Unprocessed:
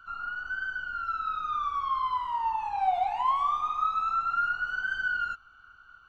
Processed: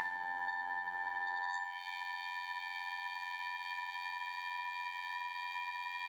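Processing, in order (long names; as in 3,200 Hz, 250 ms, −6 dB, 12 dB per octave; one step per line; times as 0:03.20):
in parallel at −7 dB: soft clipping −27.5 dBFS, distortion −12 dB
on the sum: extreme stretch with random phases 26×, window 0.50 s, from 0:04.19
on a send: ambience of single reflections 33 ms −9.5 dB, 62 ms −8.5 dB
on the sum: bit reduction 9 bits
high-pass filter sweep 150 Hz → 3,200 Hz, 0:00.71–0:01.84
harmonic generator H 5 −9 dB, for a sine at −9.5 dBFS
ring modulation 420 Hz
downward compressor 6 to 1, threshold −32 dBFS, peak gain reduction 15 dB
phases set to zero 88.8 Hz
high-shelf EQ 3,300 Hz −10.5 dB
tuned comb filter 160 Hz, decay 0.74 s, harmonics odd, mix 80%
level +11 dB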